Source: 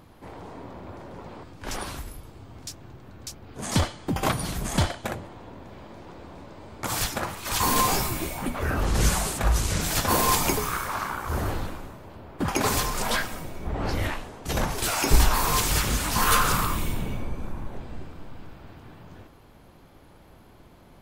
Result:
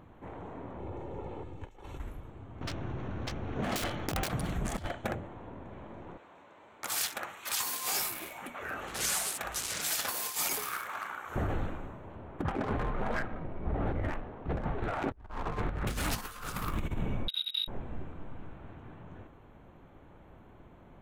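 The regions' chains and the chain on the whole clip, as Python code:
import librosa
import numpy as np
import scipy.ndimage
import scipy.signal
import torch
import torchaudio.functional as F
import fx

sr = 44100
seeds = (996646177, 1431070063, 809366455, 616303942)

y = fx.chain(x, sr, fx.peak_eq(hz=1500.0, db=-8.5, octaves=1.0),
    fx.comb(ms=2.3, depth=0.47),
    fx.over_compress(threshold_db=-38.0, ratio=-0.5), at=(0.79, 2.0))
y = fx.chain(y, sr, fx.cvsd(bps=32000),
    fx.overflow_wrap(gain_db=20.0),
    fx.env_flatten(amount_pct=50), at=(2.61, 4.28))
y = fx.chain(y, sr, fx.highpass(hz=1400.0, slope=6),
    fx.high_shelf(hz=5900.0, db=4.0), at=(6.17, 11.36))
y = fx.chain(y, sr, fx.median_filter(points=15),
    fx.lowpass(hz=4800.0, slope=24), at=(12.42, 15.87))
y = fx.chain(y, sr, fx.air_absorb(metres=310.0),
    fx.freq_invert(carrier_hz=3800),
    fx.over_compress(threshold_db=-30.0, ratio=-0.5), at=(17.28, 17.68))
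y = fx.wiener(y, sr, points=9)
y = fx.over_compress(y, sr, threshold_db=-27.0, ratio=-0.5)
y = fx.dynamic_eq(y, sr, hz=1000.0, q=5.8, threshold_db=-47.0, ratio=4.0, max_db=-6)
y = y * 10.0 ** (-4.5 / 20.0)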